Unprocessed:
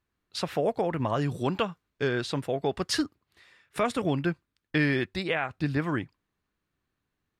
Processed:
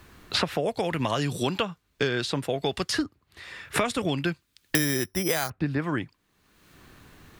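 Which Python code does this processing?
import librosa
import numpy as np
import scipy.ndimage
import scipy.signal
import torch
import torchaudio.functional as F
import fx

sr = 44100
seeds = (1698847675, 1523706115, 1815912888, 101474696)

y = fx.resample_bad(x, sr, factor=8, down='filtered', up='zero_stuff', at=(4.75, 5.5))
y = fx.band_squash(y, sr, depth_pct=100)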